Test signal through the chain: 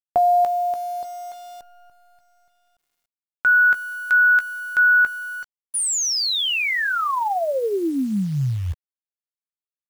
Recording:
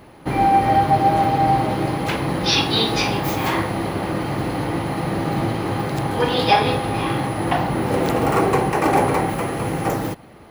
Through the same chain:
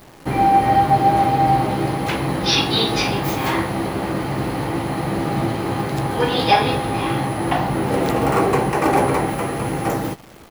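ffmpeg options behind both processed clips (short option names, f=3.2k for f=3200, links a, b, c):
-filter_complex "[0:a]asplit=2[a][b];[b]adelay=15,volume=-11dB[c];[a][c]amix=inputs=2:normalize=0,acrusher=bits=8:dc=4:mix=0:aa=0.000001"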